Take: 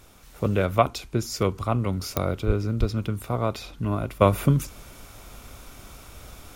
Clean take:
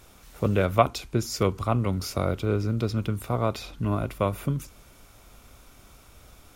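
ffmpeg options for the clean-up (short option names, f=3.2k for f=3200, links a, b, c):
-filter_complex "[0:a]adeclick=t=4,asplit=3[a][b][c];[a]afade=t=out:st=2.46:d=0.02[d];[b]highpass=f=140:w=0.5412,highpass=f=140:w=1.3066,afade=t=in:st=2.46:d=0.02,afade=t=out:st=2.58:d=0.02[e];[c]afade=t=in:st=2.58:d=0.02[f];[d][e][f]amix=inputs=3:normalize=0,asplit=3[g][h][i];[g]afade=t=out:st=2.79:d=0.02[j];[h]highpass=f=140:w=0.5412,highpass=f=140:w=1.3066,afade=t=in:st=2.79:d=0.02,afade=t=out:st=2.91:d=0.02[k];[i]afade=t=in:st=2.91:d=0.02[l];[j][k][l]amix=inputs=3:normalize=0,agate=range=-21dB:threshold=-38dB,asetnsamples=n=441:p=0,asendcmd='4.21 volume volume -7.5dB',volume=0dB"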